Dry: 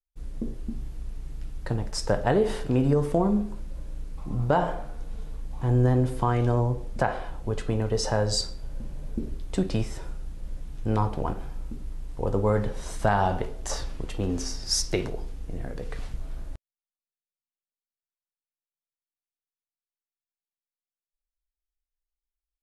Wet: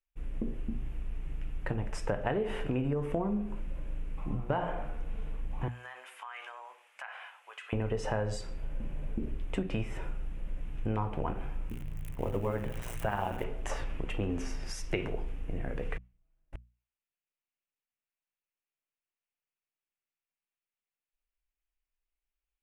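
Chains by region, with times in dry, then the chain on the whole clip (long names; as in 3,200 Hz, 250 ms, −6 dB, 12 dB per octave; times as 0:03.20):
0:05.68–0:07.73: Bessel high-pass filter 1,500 Hz, order 4 + downward compressor 3 to 1, threshold −43 dBFS
0:11.69–0:13.44: spike at every zero crossing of −27 dBFS + amplitude modulation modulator 120 Hz, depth 60%
0:15.97–0:16.53: gate with flip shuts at −30 dBFS, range −42 dB + comb filter 6.2 ms, depth 63%
whole clip: downward compressor, threshold −28 dBFS; high shelf with overshoot 3,400 Hz −8.5 dB, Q 3; mains-hum notches 60/120/180/240 Hz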